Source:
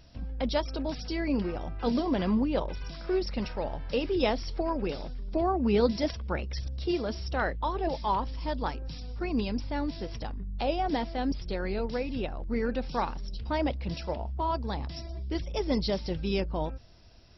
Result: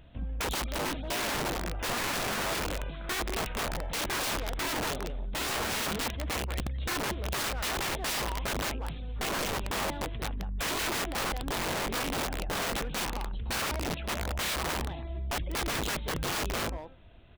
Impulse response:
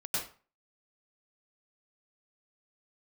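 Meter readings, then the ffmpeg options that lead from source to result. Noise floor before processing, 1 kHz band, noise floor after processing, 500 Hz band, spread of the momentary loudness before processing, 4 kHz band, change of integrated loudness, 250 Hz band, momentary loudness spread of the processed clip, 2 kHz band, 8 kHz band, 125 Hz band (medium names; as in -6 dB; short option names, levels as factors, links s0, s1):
-40 dBFS, -1.0 dB, -39 dBFS, -6.0 dB, 9 LU, +6.5 dB, -0.5 dB, -8.0 dB, 5 LU, +7.0 dB, no reading, -1.5 dB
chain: -filter_complex "[0:a]aresample=8000,aeval=exprs='0.0891*(abs(mod(val(0)/0.0891+3,4)-2)-1)':c=same,aresample=44100,asplit=2[s0][s1];[s1]adelay=180,highpass=300,lowpass=3400,asoftclip=type=hard:threshold=0.0355,volume=0.355[s2];[s0][s2]amix=inputs=2:normalize=0,aeval=exprs='(mod(25.1*val(0)+1,2)-1)/25.1':c=same,volume=1.19"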